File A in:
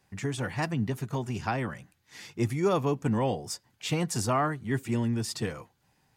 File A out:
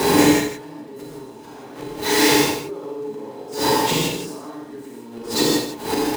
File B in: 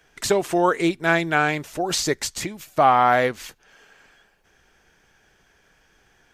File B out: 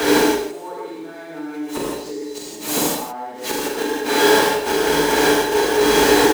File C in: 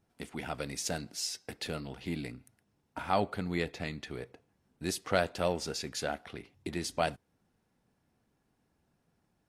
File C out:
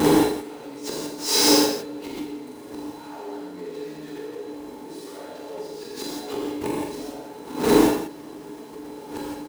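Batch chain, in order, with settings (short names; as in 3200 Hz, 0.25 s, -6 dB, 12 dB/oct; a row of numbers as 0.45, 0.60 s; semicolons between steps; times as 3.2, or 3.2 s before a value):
zero-crossing step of -18.5 dBFS; HPF 58 Hz 24 dB/oct; bell 600 Hz +3.5 dB 0.68 oct; small resonant body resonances 300/420/870/4000 Hz, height 16 dB, ringing for 90 ms; flipped gate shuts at -11 dBFS, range -29 dB; fifteen-band EQ 100 Hz -11 dB, 400 Hz +5 dB, 1000 Hz +3 dB; on a send: loudspeakers at several distances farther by 15 m -5 dB, 28 m -7 dB, 58 m -10 dB; on the sum: non-linear reverb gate 0.19 s flat, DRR -4 dB; backwards sustainer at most 110 dB/s; gain -2 dB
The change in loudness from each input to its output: +10.5, +3.0, +11.5 LU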